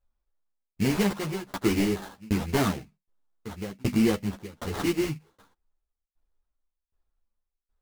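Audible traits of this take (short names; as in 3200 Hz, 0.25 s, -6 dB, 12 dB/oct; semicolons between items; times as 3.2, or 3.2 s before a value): aliases and images of a low sample rate 2500 Hz, jitter 20%; tremolo saw down 1.3 Hz, depth 100%; a shimmering, thickened sound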